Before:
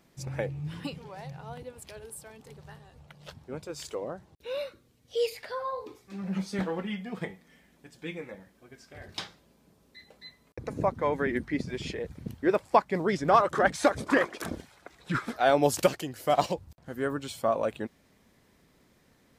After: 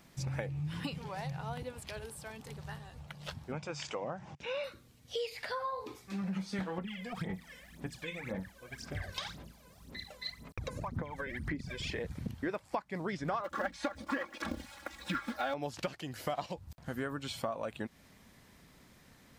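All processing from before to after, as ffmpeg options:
-filter_complex "[0:a]asettb=1/sr,asplit=3[s0][s1][s2];[s0]atrim=end=3.524[s3];[s1]atrim=start=3.52:end=4.64,asetpts=PTS-STARTPTS,afade=t=in:d=0.004:c=qsin,afade=t=out:st=1.116:d=0.004:c=qsin,acompressor=mode=upward:threshold=0.01:ratio=2.5:attack=3.2:release=140:knee=2.83:detection=peak,highpass=130,equalizer=f=140:t=q:w=4:g=4,equalizer=f=290:t=q:w=4:g=-3,equalizer=f=410:t=q:w=4:g=-5,equalizer=f=820:t=q:w=4:g=4,equalizer=f=2400:t=q:w=4:g=4,equalizer=f=4100:t=q:w=4:g=-9,lowpass=f=6600:w=0.5412,lowpass=f=6600:w=1.3066[s4];[s2]atrim=start=4.636[s5];[s3][s4]acrossfade=d=0.004:c1=hsin:c2=qsin[s6];[s6][s5]acrossfade=d=0.004:c1=qsin:c2=hsin,asettb=1/sr,asplit=3[s7][s8][s9];[s7]atrim=end=6.784[s10];[s8]atrim=start=6.78:end=11.92,asetpts=PTS-STARTPTS,afade=t=in:d=0.004:c=qsin,afade=t=out:st=5.136:d=0.004:c=qsin,acompressor=threshold=0.01:ratio=4:attack=3.2:release=140:knee=1:detection=peak,aphaser=in_gain=1:out_gain=1:delay=2:decay=0.76:speed=1.9:type=sinusoidal[s11];[s9]atrim=start=11.916[s12];[s10][s11]acrossfade=d=0.004:c1=hsin:c2=qsin[s13];[s13][s12]acrossfade=d=0.004:c1=qsin:c2=hsin,asettb=1/sr,asplit=3[s14][s15][s16];[s14]atrim=end=13.444[s17];[s15]atrim=start=13.44:end=15.54,asetpts=PTS-STARTPTS,afade=t=in:d=0.004:c=qsin,afade=t=out:st=2.096:d=0.004:c=qsin,bandreject=f=50:t=h:w=6,bandreject=f=100:t=h:w=6,bandreject=f=150:t=h:w=6,aecho=1:1:3.6:0.95,atrim=end_sample=92610,acrusher=bits=5:mode=log:mix=0:aa=0.000001[s18];[s16]atrim=start=15.536[s19];[s17][s18]acrossfade=d=0.004:c1=hsin:c2=qsin[s20];[s20][s19]acrossfade=d=0.004:c1=qsin:c2=hsin,acrossover=split=5300[s21][s22];[s22]acompressor=threshold=0.002:ratio=4:attack=1:release=60[s23];[s21][s23]amix=inputs=2:normalize=0,equalizer=f=410:t=o:w=1.3:g=-6,acompressor=threshold=0.0112:ratio=6,volume=1.78"

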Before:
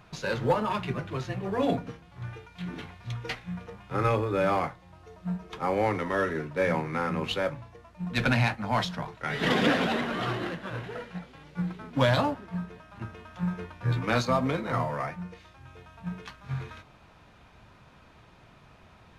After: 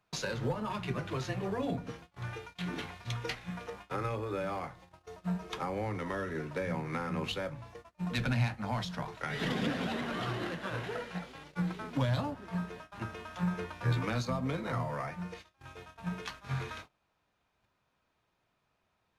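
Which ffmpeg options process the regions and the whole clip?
-filter_complex "[0:a]asettb=1/sr,asplit=3[s0][s1][s2];[s0]atrim=end=3.504[s3];[s1]atrim=start=3.5:end=4.69,asetpts=PTS-STARTPTS,afade=t=in:d=0.004:c=qsin,afade=t=out:st=1.186:d=0.004:c=qsin,bass=f=250:g=-6,treble=f=4000:g=0,aeval=exprs='val(0)+0.000891*(sin(2*PI*60*n/s)+sin(2*PI*2*60*n/s)/2+sin(2*PI*3*60*n/s)/3+sin(2*PI*4*60*n/s)/4+sin(2*PI*5*60*n/s)/5)':c=same[s4];[s2]atrim=start=4.686[s5];[s3][s4]acrossfade=d=0.004:c1=hsin:c2=qsin[s6];[s6][s5]acrossfade=d=0.004:c1=qsin:c2=hsin,agate=range=0.0631:threshold=0.00355:ratio=16:detection=peak,bass=f=250:g=-6,treble=f=4000:g=4,acrossover=split=200[s7][s8];[s8]acompressor=threshold=0.0141:ratio=10[s9];[s7][s9]amix=inputs=2:normalize=0,volume=1.41"

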